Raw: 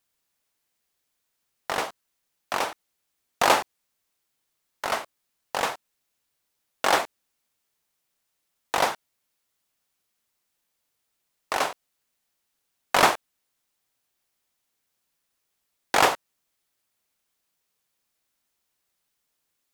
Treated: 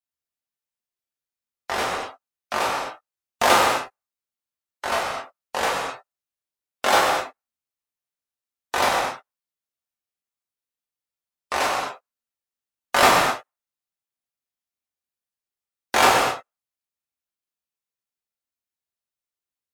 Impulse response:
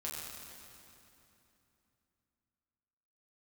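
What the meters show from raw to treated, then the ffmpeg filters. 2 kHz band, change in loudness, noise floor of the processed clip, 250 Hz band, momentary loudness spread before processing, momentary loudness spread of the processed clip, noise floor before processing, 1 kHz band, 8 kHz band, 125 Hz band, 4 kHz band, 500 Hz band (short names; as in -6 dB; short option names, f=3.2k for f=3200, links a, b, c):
+4.5 dB, +4.0 dB, under -85 dBFS, +5.0 dB, 15 LU, 17 LU, -78 dBFS, +5.0 dB, +4.5 dB, +5.5 dB, +4.5 dB, +4.5 dB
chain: -filter_complex "[1:a]atrim=start_sample=2205,afade=t=out:st=0.32:d=0.01,atrim=end_sample=14553[a];[0:a][a]afir=irnorm=-1:irlink=0,afftdn=nr=20:nf=-52,volume=4.5dB"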